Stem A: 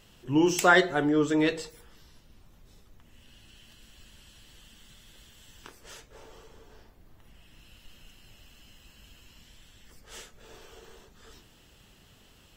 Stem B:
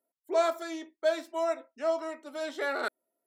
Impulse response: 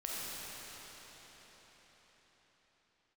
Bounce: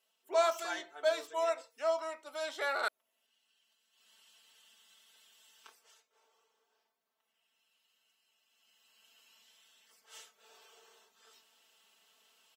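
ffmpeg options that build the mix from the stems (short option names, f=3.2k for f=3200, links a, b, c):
-filter_complex "[0:a]aecho=1:1:4.5:0.98,volume=1dB,afade=t=in:st=3.91:d=0.21:silence=0.281838,afade=t=out:st=5.71:d=0.23:silence=0.298538,afade=t=in:st=8.47:d=0.76:silence=0.281838[a];[1:a]volume=1dB[b];[a][b]amix=inputs=2:normalize=0,highpass=720,equalizer=f=1.8k:t=o:w=0.35:g=-4.5"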